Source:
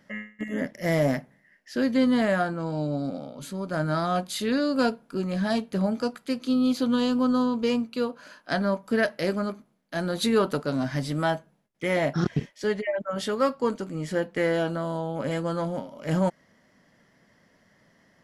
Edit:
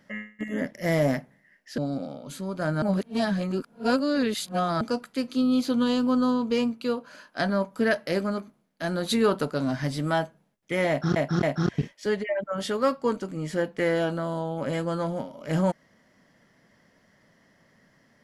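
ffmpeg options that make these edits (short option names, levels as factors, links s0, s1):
-filter_complex "[0:a]asplit=6[s0][s1][s2][s3][s4][s5];[s0]atrim=end=1.782[s6];[s1]atrim=start=2.898:end=3.942[s7];[s2]atrim=start=3.938:end=5.932,asetpts=PTS-STARTPTS,areverse[s8];[s3]atrim=start=5.928:end=12.282[s9];[s4]atrim=start=12.008:end=12.282[s10];[s5]atrim=start=12.008[s11];[s6][s7]acrossfade=d=0.004:c1=hsin:c2=hsin[s12];[s12][s8]acrossfade=d=0.004:c1=hsin:c2=hsin[s13];[s13][s9]acrossfade=d=0.004:c1=hsin:c2=hsin[s14];[s14][s10]acrossfade=d=0.004:c1=hsin:c2=hsin[s15];[s15][s11]acrossfade=d=0.004:c1=hsin:c2=hsin"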